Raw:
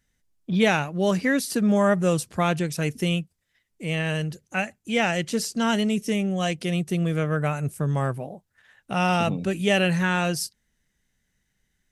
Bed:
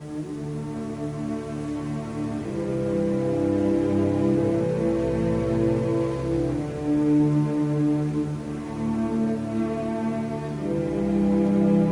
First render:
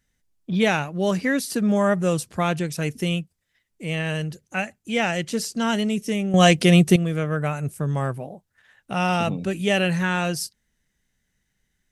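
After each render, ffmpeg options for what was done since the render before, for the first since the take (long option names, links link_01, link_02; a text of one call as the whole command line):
ffmpeg -i in.wav -filter_complex "[0:a]asplit=3[link_01][link_02][link_03];[link_01]atrim=end=6.342[link_04];[link_02]atrim=start=6.338:end=6.962,asetpts=PTS-STARTPTS,volume=11dB[link_05];[link_03]atrim=start=6.958[link_06];[link_04][link_05]acrossfade=duration=0.004:curve1=hsin:curve2=hsin[link_07];[link_07][link_06]acrossfade=duration=0.004:curve1=hsin:curve2=hsin" out.wav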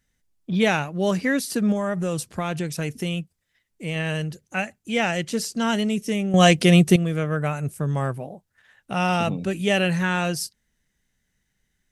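ffmpeg -i in.wav -filter_complex "[0:a]asettb=1/sr,asplit=3[link_01][link_02][link_03];[link_01]atrim=end=1.724[link_04];[link_02]atrim=start=1.72:end=3.96,asetpts=PTS-STARTPTS,afade=type=in:duration=0.004:curve=qsin,afade=type=out:start_time=2.236:duration=0.004:curve=qsin,acompressor=threshold=-21dB:ratio=6:attack=3.2:release=140:knee=1:detection=peak[link_05];[link_03]atrim=start=3.956[link_06];[link_04][link_05]acrossfade=duration=0.004:curve1=hsin:curve2=qsin[link_07];[link_07][link_06]acrossfade=duration=0.004:curve1=qsin:curve2=hsin" out.wav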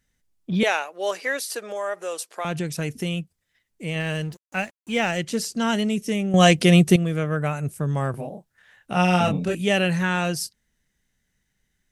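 ffmpeg -i in.wav -filter_complex "[0:a]asettb=1/sr,asplit=3[link_01][link_02][link_03];[link_01]atrim=end=0.634[link_04];[link_02]atrim=start=0.63:end=2.45,asetpts=PTS-STARTPTS,afade=type=in:duration=0.004:curve=qsin,afade=type=out:start_time=1.816:duration=0.004:curve=qsin,highpass=frequency=450:width=0.5412,highpass=frequency=450:width=1.3066[link_05];[link_03]atrim=start=2.446[link_06];[link_04][link_05]acrossfade=duration=0.004:curve1=hsin:curve2=qsin[link_07];[link_07][link_06]acrossfade=duration=0.004:curve1=qsin:curve2=hsin,asettb=1/sr,asplit=3[link_08][link_09][link_10];[link_08]atrim=end=4.004[link_11];[link_09]atrim=start=4:end=5.18,asetpts=PTS-STARTPTS,afade=type=in:duration=0.004:curve=qsin,afade=type=out:start_time=1.176:duration=0.004:curve=qsin,aeval=exprs='sgn(val(0))*max(abs(val(0))-0.00473,0)':channel_layout=same[link_12];[link_10]atrim=start=5.176[link_13];[link_11][link_12]acrossfade=duration=0.004:curve1=hsin:curve2=qsin[link_14];[link_14][link_13]acrossfade=duration=0.004:curve1=qsin:curve2=hsin,asettb=1/sr,asplit=3[link_15][link_16][link_17];[link_15]atrim=end=8.114[link_18];[link_16]atrim=start=8.11:end=9.55,asetpts=PTS-STARTPTS,afade=type=in:duration=0.004:curve=qsin,afade=type=out:start_time=1.436:duration=0.004:curve=qsin,asplit=2[link_19][link_20];[link_20]adelay=28,volume=-2.5dB[link_21];[link_19][link_21]amix=inputs=2:normalize=0,atrim=end_sample=63504[link_22];[link_17]atrim=start=9.546[link_23];[link_18][link_22]acrossfade=duration=0.004:curve1=hsin:curve2=qsin[link_24];[link_24][link_23]acrossfade=duration=0.004:curve1=qsin:curve2=hsin" out.wav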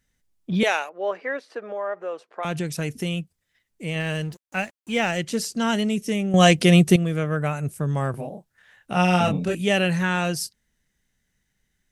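ffmpeg -i in.wav -filter_complex "[0:a]asettb=1/sr,asplit=3[link_01][link_02][link_03];[link_01]atrim=end=0.894[link_04];[link_02]atrim=start=0.89:end=2.43,asetpts=PTS-STARTPTS,afade=type=in:duration=0.004:curve=qsin,afade=type=out:start_time=1.536:duration=0.004:curve=qsin,lowpass=1600[link_05];[link_03]atrim=start=2.426[link_06];[link_04][link_05]acrossfade=duration=0.004:curve1=hsin:curve2=qsin[link_07];[link_07][link_06]acrossfade=duration=0.004:curve1=qsin:curve2=hsin" out.wav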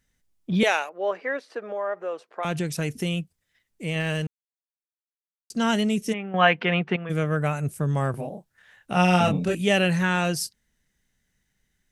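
ffmpeg -i in.wav -filter_complex "[0:a]asplit=3[link_01][link_02][link_03];[link_01]afade=type=out:start_time=6.12:duration=0.02[link_04];[link_02]highpass=330,equalizer=frequency=340:width_type=q:width=4:gain=-9,equalizer=frequency=590:width_type=q:width=4:gain=-8,equalizer=frequency=920:width_type=q:width=4:gain=7,equalizer=frequency=1500:width_type=q:width=4:gain=6,lowpass=frequency=2600:width=0.5412,lowpass=frequency=2600:width=1.3066,afade=type=in:start_time=6.12:duration=0.02,afade=type=out:start_time=7.09:duration=0.02[link_05];[link_03]afade=type=in:start_time=7.09:duration=0.02[link_06];[link_04][link_05][link_06]amix=inputs=3:normalize=0,asplit=3[link_07][link_08][link_09];[link_07]atrim=end=4.27,asetpts=PTS-STARTPTS,afade=type=out:start_time=4.266:duration=0.004:curve=hsin[link_10];[link_08]atrim=start=4.27:end=5.5,asetpts=PTS-STARTPTS,volume=0[link_11];[link_09]atrim=start=5.5,asetpts=PTS-STARTPTS,afade=type=in:duration=0.004:curve=hsin[link_12];[link_10][link_11][link_12]concat=n=3:v=0:a=1" out.wav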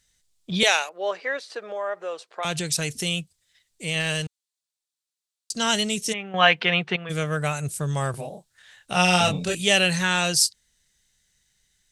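ffmpeg -i in.wav -af "equalizer=frequency=250:width_type=o:width=1:gain=-7,equalizer=frequency=4000:width_type=o:width=1:gain=10,equalizer=frequency=8000:width_type=o:width=1:gain=11" out.wav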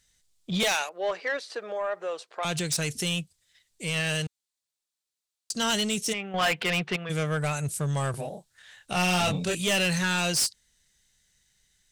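ffmpeg -i in.wav -af "asoftclip=type=tanh:threshold=-20.5dB" out.wav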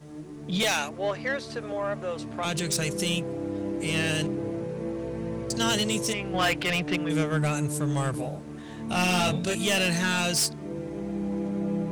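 ffmpeg -i in.wav -i bed.wav -filter_complex "[1:a]volume=-9dB[link_01];[0:a][link_01]amix=inputs=2:normalize=0" out.wav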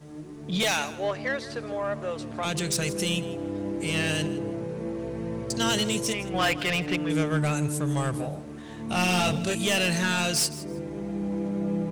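ffmpeg -i in.wav -af "aecho=1:1:161|322:0.141|0.0297" out.wav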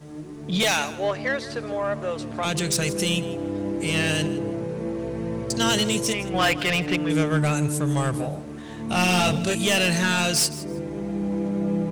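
ffmpeg -i in.wav -af "volume=3.5dB" out.wav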